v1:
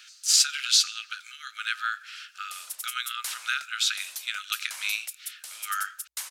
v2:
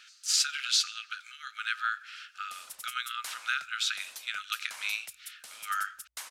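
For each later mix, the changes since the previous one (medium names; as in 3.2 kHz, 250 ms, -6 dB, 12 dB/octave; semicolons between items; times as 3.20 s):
master: add tilt EQ -2.5 dB/octave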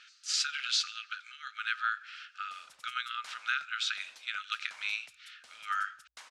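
background -5.0 dB; master: add distance through air 90 m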